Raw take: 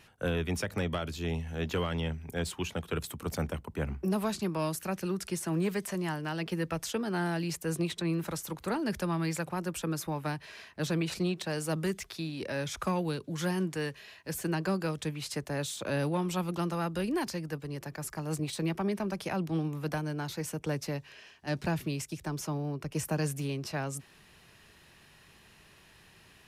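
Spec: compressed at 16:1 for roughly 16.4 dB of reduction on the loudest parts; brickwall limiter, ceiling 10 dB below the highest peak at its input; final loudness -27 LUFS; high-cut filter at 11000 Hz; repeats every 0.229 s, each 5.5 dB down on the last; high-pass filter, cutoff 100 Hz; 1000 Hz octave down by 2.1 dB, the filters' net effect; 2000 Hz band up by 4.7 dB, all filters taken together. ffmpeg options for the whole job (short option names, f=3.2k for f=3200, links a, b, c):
-af "highpass=100,lowpass=11k,equalizer=f=1k:t=o:g=-5,equalizer=f=2k:t=o:g=8,acompressor=threshold=-43dB:ratio=16,alimiter=level_in=16.5dB:limit=-24dB:level=0:latency=1,volume=-16.5dB,aecho=1:1:229|458|687|916|1145|1374|1603:0.531|0.281|0.149|0.079|0.0419|0.0222|0.0118,volume=21.5dB"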